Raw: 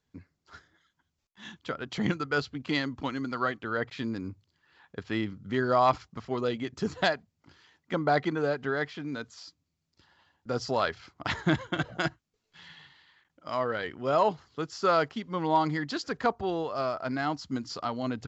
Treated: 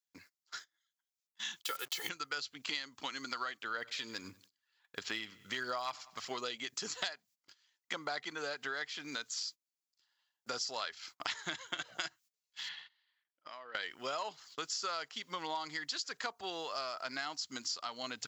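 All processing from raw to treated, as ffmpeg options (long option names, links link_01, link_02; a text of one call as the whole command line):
ffmpeg -i in.wav -filter_complex "[0:a]asettb=1/sr,asplit=3[link_01][link_02][link_03];[link_01]atrim=end=1.624[link_04];[link_02]atrim=start=1.62:end=2.09,asetpts=PTS-STARTPTS,afade=type=in:duration=0.004:curve=qsin,afade=type=out:start_time=0.466:duration=0.004:curve=qsin,bandreject=frequency=50:width_type=h:width=6,bandreject=frequency=100:width_type=h:width=6,bandreject=frequency=150:width_type=h:width=6,aecho=1:1:2.3:0.97,atrim=end_sample=20727,acrusher=bits=7:mix=0:aa=0.5[link_05];[link_03]atrim=start=2.086[link_06];[link_04][link_05]acrossfade=duration=0.004:curve1=hsin:curve2=qsin[link_07];[link_07][link_06]acrossfade=duration=0.004:curve1=qsin:curve2=hsin,asettb=1/sr,asplit=3[link_08][link_09][link_10];[link_08]atrim=end=3.744[link_11];[link_09]atrim=start=3.74:end=6.28,asetpts=PTS-STARTPTS,afade=type=in:duration=0.004:curve=qsin,afade=type=out:start_time=2.536:duration=0.004:curve=qsin,aphaser=in_gain=1:out_gain=1:delay=2.3:decay=0.31:speed=1.5:type=sinusoidal,asplit=2[link_12][link_13];[link_13]adelay=95,lowpass=frequency=4900:poles=1,volume=-23dB,asplit=2[link_14][link_15];[link_15]adelay=95,lowpass=frequency=4900:poles=1,volume=0.43,asplit=2[link_16][link_17];[link_17]adelay=95,lowpass=frequency=4900:poles=1,volume=0.43[link_18];[link_12][link_14][link_16][link_18]amix=inputs=4:normalize=0,atrim=end_sample=112014[link_19];[link_10]atrim=start=6.276[link_20];[link_11][link_19]acrossfade=duration=0.004:curve1=hsin:curve2=qsin[link_21];[link_21][link_20]acrossfade=duration=0.004:curve1=qsin:curve2=hsin,asettb=1/sr,asplit=3[link_22][link_23][link_24];[link_22]atrim=end=12.694[link_25];[link_23]atrim=start=12.69:end=13.75,asetpts=PTS-STARTPTS,afade=type=in:duration=0.004:curve=qsin,afade=type=out:start_time=1.056:duration=0.004:curve=qsin,highshelf=frequency=3100:gain=-5,acompressor=threshold=-45dB:ratio=8:attack=3.2:release=140:knee=1:detection=peak,highpass=150,lowpass=4200[link_26];[link_24]atrim=start=13.746[link_27];[link_25][link_26]acrossfade=duration=0.004:curve1=hsin:curve2=qsin[link_28];[link_28][link_27]acrossfade=duration=0.004:curve1=qsin:curve2=hsin,agate=range=-23dB:threshold=-53dB:ratio=16:detection=peak,aderivative,acompressor=threshold=-54dB:ratio=6,volume=17.5dB" out.wav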